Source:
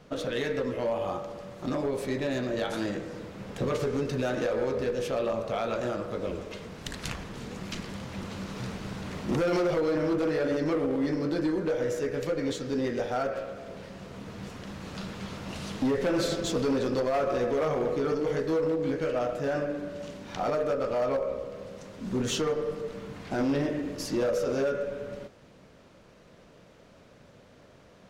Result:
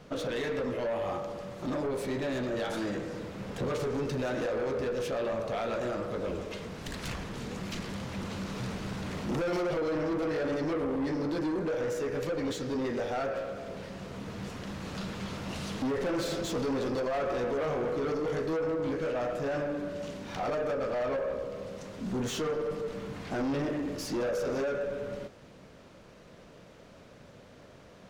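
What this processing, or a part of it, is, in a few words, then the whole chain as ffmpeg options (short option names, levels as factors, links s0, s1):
saturation between pre-emphasis and de-emphasis: -af "highshelf=f=4000:g=12,asoftclip=type=tanh:threshold=0.0335,highshelf=f=4000:g=-12,volume=1.26"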